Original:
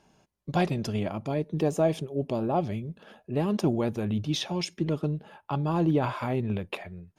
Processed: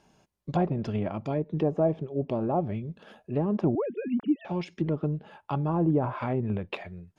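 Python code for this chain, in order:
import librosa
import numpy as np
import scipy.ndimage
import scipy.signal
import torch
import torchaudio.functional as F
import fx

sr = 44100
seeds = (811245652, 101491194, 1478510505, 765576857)

y = fx.sine_speech(x, sr, at=(3.75, 4.45))
y = fx.env_lowpass_down(y, sr, base_hz=1000.0, full_db=-22.5)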